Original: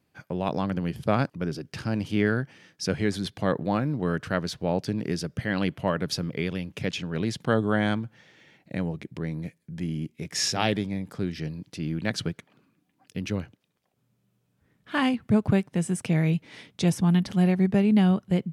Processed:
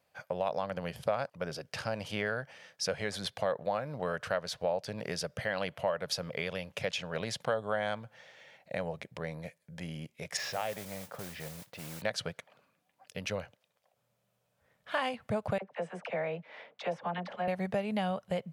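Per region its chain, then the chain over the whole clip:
10.37–12.02 s: low-pass 2.5 kHz + compression 2.5:1, threshold -32 dBFS + modulation noise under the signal 14 dB
15.58–17.48 s: band-pass 290–2000 Hz + phase dispersion lows, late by 43 ms, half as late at 810 Hz
whole clip: resonant low shelf 430 Hz -9 dB, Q 3; compression 3:1, threshold -30 dBFS

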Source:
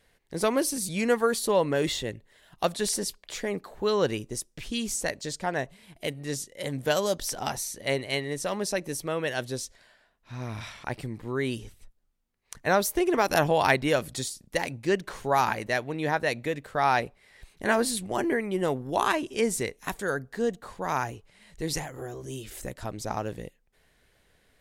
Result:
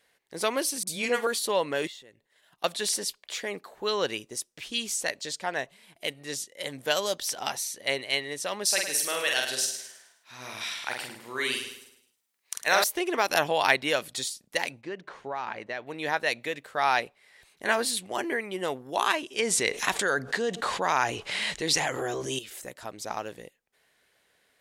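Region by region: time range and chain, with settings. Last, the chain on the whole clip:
0.83–1.27 s: phase dispersion highs, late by 43 ms, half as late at 980 Hz + flutter echo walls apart 8.5 m, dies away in 0.22 s
1.87–2.64 s: expander -55 dBFS + compression 3:1, threshold -50 dBFS
8.65–12.84 s: tilt EQ +2.5 dB/octave + doubling 47 ms -3.5 dB + feedback delay 106 ms, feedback 41%, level -9 dB
14.81–15.87 s: hum notches 50/100/150 Hz + compression 5:1, threshold -25 dBFS + tape spacing loss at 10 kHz 23 dB
19.39–22.39 s: low-pass 8.8 kHz + level flattener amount 70%
whole clip: high-pass 570 Hz 6 dB/octave; dynamic bell 3.2 kHz, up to +5 dB, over -46 dBFS, Q 1.1

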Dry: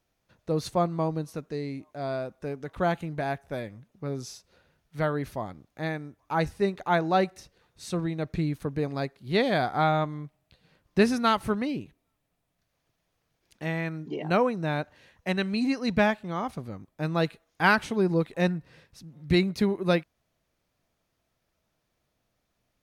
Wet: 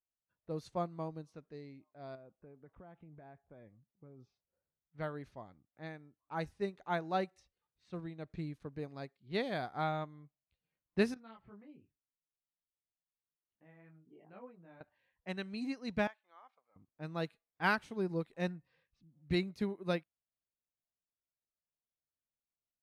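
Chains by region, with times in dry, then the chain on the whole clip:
2.15–4.98 s: low-pass 1.2 kHz 6 dB/octave + compression 10:1, threshold -32 dBFS
11.14–14.81 s: distance through air 260 m + compression 1.5:1, threshold -43 dBFS + detune thickener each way 21 cents
16.07–16.76 s: Bessel high-pass 1.4 kHz + treble shelf 2.3 kHz -11 dB
whole clip: spectral noise reduction 11 dB; level-controlled noise filter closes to 2 kHz, open at -23 dBFS; upward expansion 1.5:1, over -35 dBFS; trim -8.5 dB

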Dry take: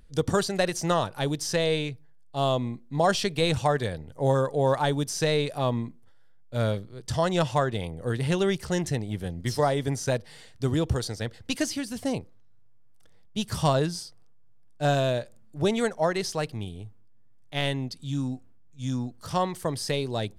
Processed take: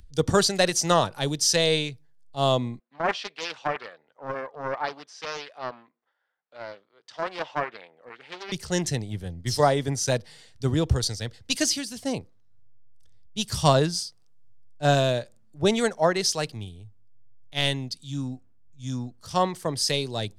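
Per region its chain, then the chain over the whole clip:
2.79–8.52 s: band-pass 770–2500 Hz + loudspeaker Doppler distortion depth 0.45 ms
whole clip: peaking EQ 5.4 kHz +6.5 dB 1.7 oct; upward compressor, threshold -35 dBFS; three bands expanded up and down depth 70%

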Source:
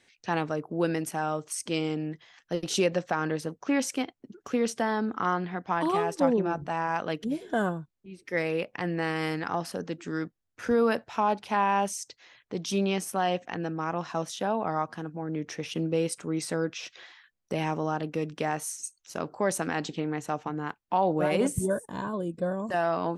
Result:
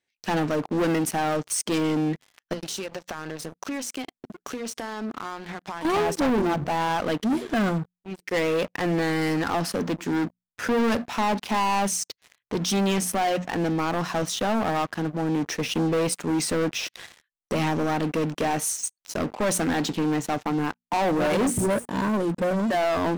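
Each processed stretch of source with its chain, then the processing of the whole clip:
2.53–5.85 s: treble shelf 3.3 kHz +7.5 dB + compression, threshold -40 dBFS
whole clip: hum notches 60/120/180/240 Hz; dynamic bell 240 Hz, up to +6 dB, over -45 dBFS, Q 2.7; waveshaping leveller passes 5; trim -8.5 dB

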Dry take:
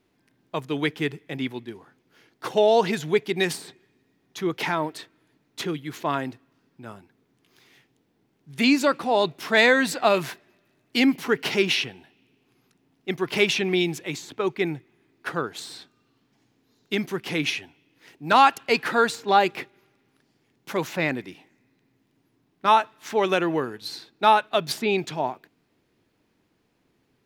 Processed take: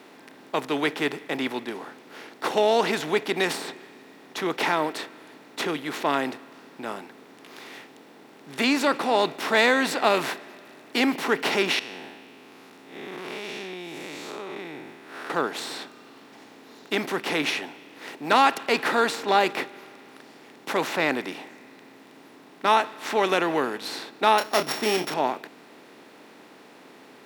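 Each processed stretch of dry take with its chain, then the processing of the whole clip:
11.79–15.30 s: spectral blur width 185 ms + compression 3:1, threshold -47 dBFS
24.38–25.14 s: sorted samples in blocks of 8 samples + doubling 28 ms -10.5 dB
whole clip: spectral levelling over time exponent 0.6; high-pass 190 Hz 12 dB/octave; trim -4.5 dB

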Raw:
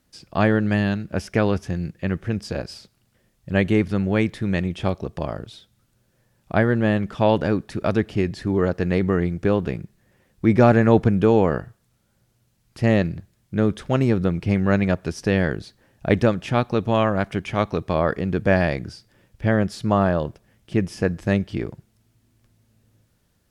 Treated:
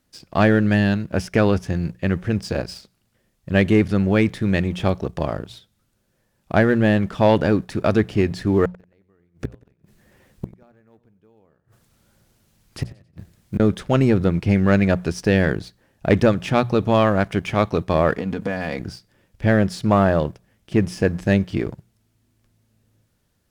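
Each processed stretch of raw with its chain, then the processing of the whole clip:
8.65–13.60 s: companding laws mixed up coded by mu + inverted gate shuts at -16 dBFS, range -38 dB + modulated delay 91 ms, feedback 39%, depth 81 cents, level -16 dB
18.18–18.80 s: high-pass 84 Hz 24 dB/octave + comb 4.1 ms, depth 64% + compression, threshold -24 dBFS
whole clip: hum notches 60/120/180 Hz; waveshaping leveller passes 1

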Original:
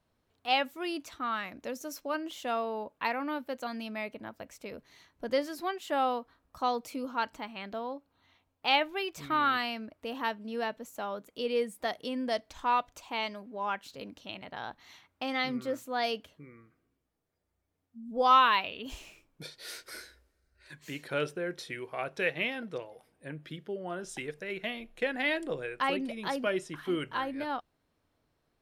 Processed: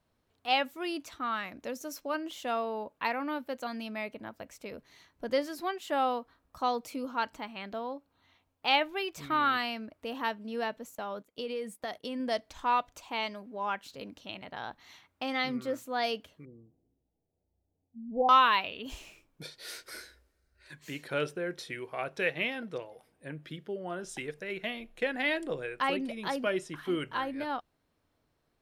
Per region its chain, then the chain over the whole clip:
10.95–12.20 s: gate -50 dBFS, range -12 dB + compression 5:1, threshold -32 dBFS
16.45–18.29 s: elliptic low-pass 840 Hz + bass shelf 190 Hz +4.5 dB
whole clip: none

